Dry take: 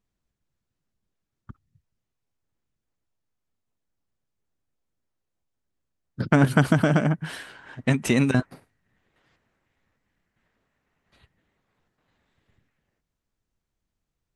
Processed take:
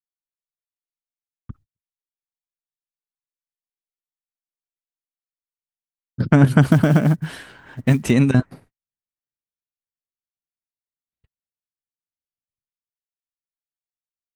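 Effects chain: gate -53 dBFS, range -43 dB; bass shelf 300 Hz +8.5 dB; 6.63–8.11 s: short-mantissa float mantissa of 4-bit

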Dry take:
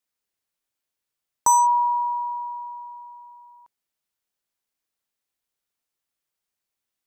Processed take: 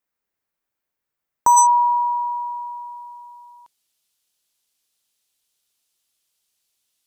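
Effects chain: high-order bell 5.9 kHz -8 dB 2.5 oct, from 1.56 s +10 dB; trim +4 dB

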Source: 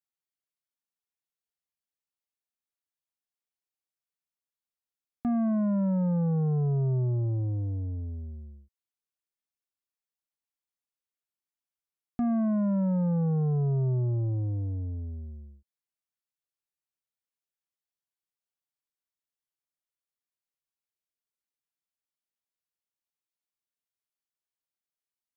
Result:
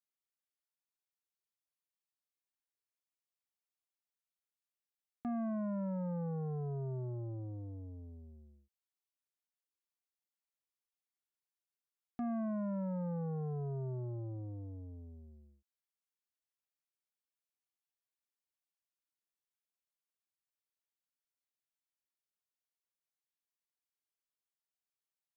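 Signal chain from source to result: bass shelf 210 Hz -11.5 dB; trim -5.5 dB

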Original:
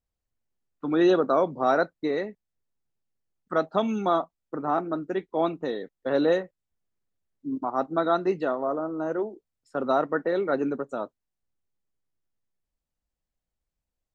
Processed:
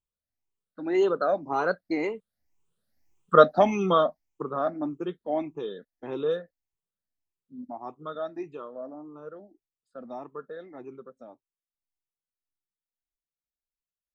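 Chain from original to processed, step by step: drifting ripple filter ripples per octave 0.7, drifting +1.8 Hz, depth 14 dB; Doppler pass-by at 3.08 s, 22 m/s, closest 8.4 m; trim +8 dB

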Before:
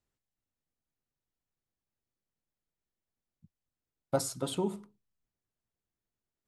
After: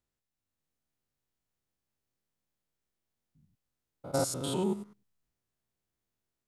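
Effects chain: spectrogram pixelated in time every 100 ms; level rider gain up to 5 dB

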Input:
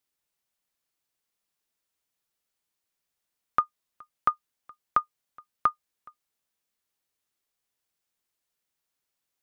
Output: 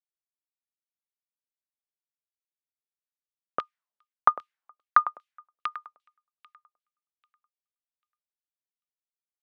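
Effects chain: compression 2.5:1, threshold -26 dBFS, peak gain reduction 6 dB; on a send: feedback delay 792 ms, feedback 43%, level -13.5 dB; on the sum: LFO band-pass saw down 2.5 Hz 510–3500 Hz; three bands expanded up and down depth 100%; trim +5 dB

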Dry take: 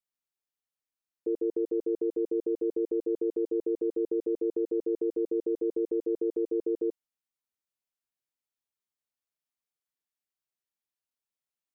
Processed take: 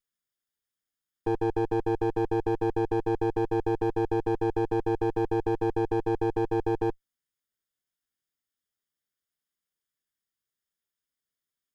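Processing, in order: comb filter that takes the minimum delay 0.6 ms; trim +4 dB

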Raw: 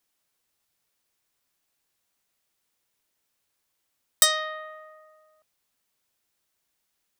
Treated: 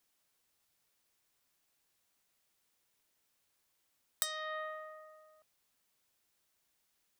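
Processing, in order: compression 10:1, threshold -32 dBFS, peak gain reduction 19 dB; trim -1 dB

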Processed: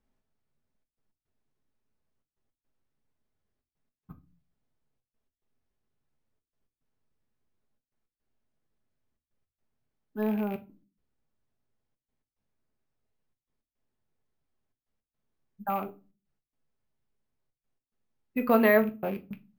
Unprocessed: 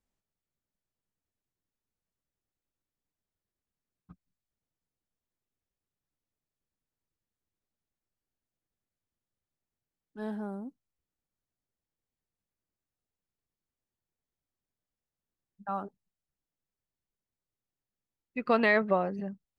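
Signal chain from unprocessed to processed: rattle on loud lows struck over -42 dBFS, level -35 dBFS; treble shelf 2.7 kHz -9.5 dB; in parallel at +2 dB: compression, threshold -38 dBFS, peak gain reduction 16.5 dB; on the sum: trance gate "xxxxxx.x.x" 108 bpm -60 dB; reverberation RT60 0.30 s, pre-delay 5 ms, DRR 5.5 dB; careless resampling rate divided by 3×, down filtered, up hold

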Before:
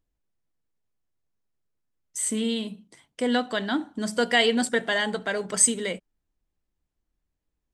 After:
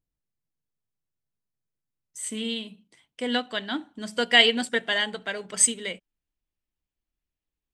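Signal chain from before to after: peaking EQ 140 Hz +8 dB 1.1 oct, from 2.24 s 2.8 kHz; upward expansion 1.5:1, over -30 dBFS

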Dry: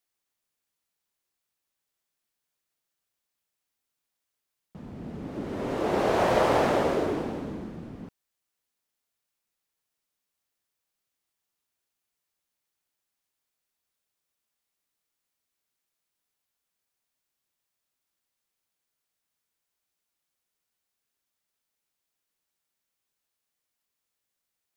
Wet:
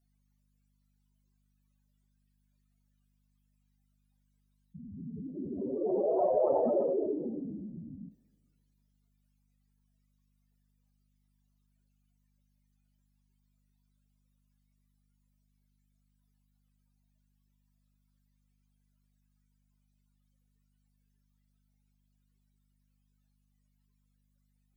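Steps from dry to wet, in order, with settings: spectral contrast enhancement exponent 3.9; hum 50 Hz, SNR 34 dB; two-slope reverb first 0.3 s, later 1.8 s, from -21 dB, DRR 7.5 dB; trim -4 dB

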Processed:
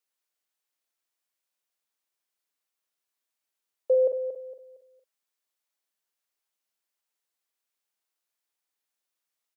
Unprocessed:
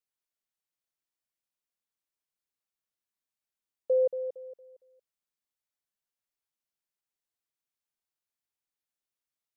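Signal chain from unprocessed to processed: Bessel high-pass 360 Hz; doubling 44 ms -9 dB; trim +5.5 dB

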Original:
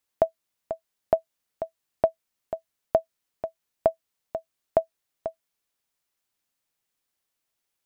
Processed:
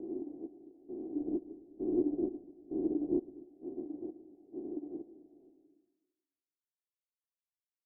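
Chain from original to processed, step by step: every event in the spectrogram widened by 480 ms; cascade formant filter a; distance through air 190 m; plate-style reverb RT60 1.2 s, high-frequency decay 0.8×, pre-delay 95 ms, DRR 6 dB; frequency shift -360 Hz; 1.15–3.46 s: tilt EQ -2 dB/octave; delay 108 ms -16 dB; upward expansion 2.5:1, over -27 dBFS; trim -9 dB

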